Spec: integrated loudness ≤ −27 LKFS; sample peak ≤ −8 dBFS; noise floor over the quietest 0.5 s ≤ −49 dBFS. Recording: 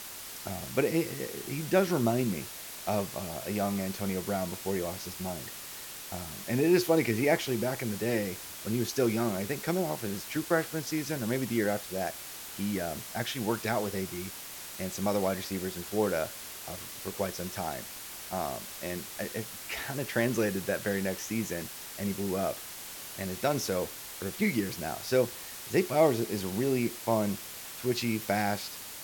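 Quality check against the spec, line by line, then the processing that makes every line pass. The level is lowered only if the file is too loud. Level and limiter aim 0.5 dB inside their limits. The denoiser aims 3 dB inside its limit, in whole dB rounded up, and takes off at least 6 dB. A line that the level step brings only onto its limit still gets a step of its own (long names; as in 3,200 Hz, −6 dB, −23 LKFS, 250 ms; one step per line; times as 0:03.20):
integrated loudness −31.5 LKFS: in spec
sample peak −11.0 dBFS: in spec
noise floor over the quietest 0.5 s −43 dBFS: out of spec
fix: broadband denoise 9 dB, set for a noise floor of −43 dBFS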